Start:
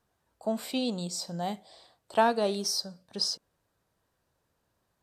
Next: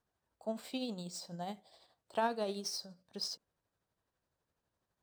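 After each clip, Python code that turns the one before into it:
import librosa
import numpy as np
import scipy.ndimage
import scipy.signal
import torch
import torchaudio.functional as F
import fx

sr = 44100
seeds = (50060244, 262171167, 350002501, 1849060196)

y = scipy.signal.medfilt(x, 3)
y = y * (1.0 - 0.44 / 2.0 + 0.44 / 2.0 * np.cos(2.0 * np.pi * 12.0 * (np.arange(len(y)) / sr)))
y = y * librosa.db_to_amplitude(-7.0)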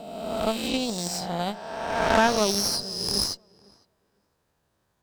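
y = fx.spec_swells(x, sr, rise_s=1.77)
y = fx.cheby_harmonics(y, sr, harmonics=(6,), levels_db=(-13,), full_scale_db=-15.5)
y = fx.echo_tape(y, sr, ms=505, feedback_pct=20, wet_db=-22, lp_hz=1600.0, drive_db=20.0, wow_cents=6)
y = y * librosa.db_to_amplitude(8.5)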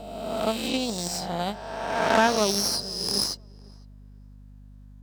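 y = scipy.signal.sosfilt(scipy.signal.butter(2, 130.0, 'highpass', fs=sr, output='sos'), x)
y = fx.add_hum(y, sr, base_hz=50, snr_db=19)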